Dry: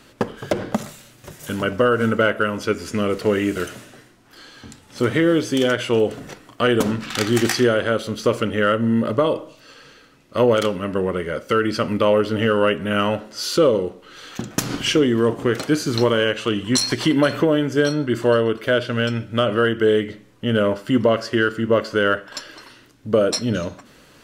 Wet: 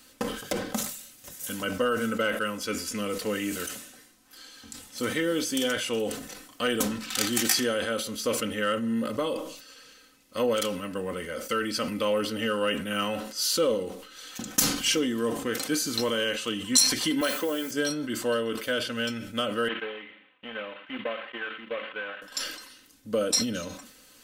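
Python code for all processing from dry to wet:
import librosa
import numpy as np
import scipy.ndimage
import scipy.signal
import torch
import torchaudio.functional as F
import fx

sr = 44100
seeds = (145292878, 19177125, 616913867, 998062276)

y = fx.chain(x, sr, fx.highpass(hz=300.0, slope=12),
    fx.quant_dither(seeds[0], bits=8, dither='triangular'), at=(17.21, 17.71))
y = fx.chain(y, sr, fx.cvsd(bps=16000),
    fx.highpass(hz=1400.0, slope=6),
    fx.transient(attack_db=6, sustain_db=-7), at=(19.68, 22.22))
y = scipy.signal.lfilter([1.0, -0.8], [1.0], y)
y = y + 0.58 * np.pad(y, (int(3.9 * sr / 1000.0), 0))[:len(y)]
y = fx.sustainer(y, sr, db_per_s=70.0)
y = F.gain(torch.from_numpy(y), 1.5).numpy()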